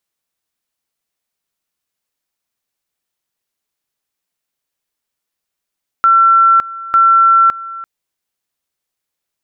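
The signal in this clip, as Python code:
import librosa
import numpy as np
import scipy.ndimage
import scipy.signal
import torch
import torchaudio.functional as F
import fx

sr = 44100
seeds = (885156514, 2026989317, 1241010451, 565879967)

y = fx.two_level_tone(sr, hz=1350.0, level_db=-5.5, drop_db=18.5, high_s=0.56, low_s=0.34, rounds=2)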